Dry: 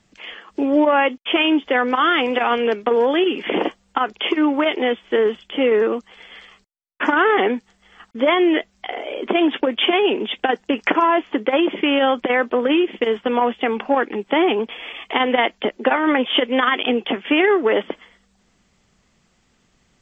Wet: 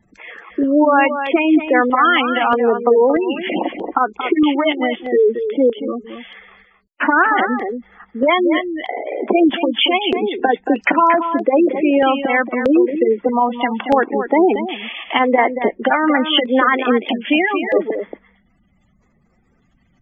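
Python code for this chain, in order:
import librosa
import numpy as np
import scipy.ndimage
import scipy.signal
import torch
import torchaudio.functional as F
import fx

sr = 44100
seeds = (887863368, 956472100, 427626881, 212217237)

y = fx.spec_gate(x, sr, threshold_db=-15, keep='strong')
y = y + 10.0 ** (-9.0 / 20.0) * np.pad(y, (int(229 * sr / 1000.0), 0))[:len(y)]
y = fx.filter_lfo_notch(y, sr, shape='square', hz=0.79, low_hz=430.0, high_hz=3000.0, q=1.7)
y = F.gain(torch.from_numpy(y), 4.5).numpy()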